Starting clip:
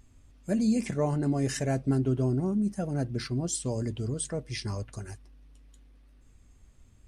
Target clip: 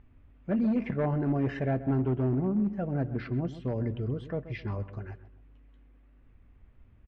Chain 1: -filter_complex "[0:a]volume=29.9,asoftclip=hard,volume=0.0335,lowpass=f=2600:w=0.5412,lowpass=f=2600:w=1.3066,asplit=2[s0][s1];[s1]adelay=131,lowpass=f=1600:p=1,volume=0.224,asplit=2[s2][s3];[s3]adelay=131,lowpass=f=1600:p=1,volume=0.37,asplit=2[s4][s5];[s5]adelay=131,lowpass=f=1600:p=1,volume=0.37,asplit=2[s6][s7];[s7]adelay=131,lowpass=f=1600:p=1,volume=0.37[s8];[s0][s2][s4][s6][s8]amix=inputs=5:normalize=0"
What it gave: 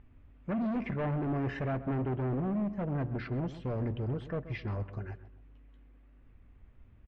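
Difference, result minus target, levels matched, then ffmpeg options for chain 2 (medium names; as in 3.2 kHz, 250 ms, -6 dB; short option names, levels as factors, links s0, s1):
overload inside the chain: distortion +11 dB
-filter_complex "[0:a]volume=12.6,asoftclip=hard,volume=0.0794,lowpass=f=2600:w=0.5412,lowpass=f=2600:w=1.3066,asplit=2[s0][s1];[s1]adelay=131,lowpass=f=1600:p=1,volume=0.224,asplit=2[s2][s3];[s3]adelay=131,lowpass=f=1600:p=1,volume=0.37,asplit=2[s4][s5];[s5]adelay=131,lowpass=f=1600:p=1,volume=0.37,asplit=2[s6][s7];[s7]adelay=131,lowpass=f=1600:p=1,volume=0.37[s8];[s0][s2][s4][s6][s8]amix=inputs=5:normalize=0"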